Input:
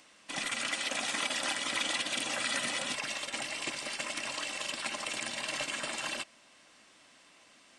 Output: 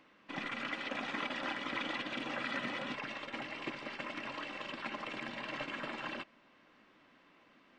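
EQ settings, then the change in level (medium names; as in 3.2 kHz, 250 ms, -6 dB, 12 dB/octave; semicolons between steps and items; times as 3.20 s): tape spacing loss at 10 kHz 43 dB; peaking EQ 66 Hz -6.5 dB 2 oct; peaking EQ 670 Hz -6 dB 0.68 oct; +4.5 dB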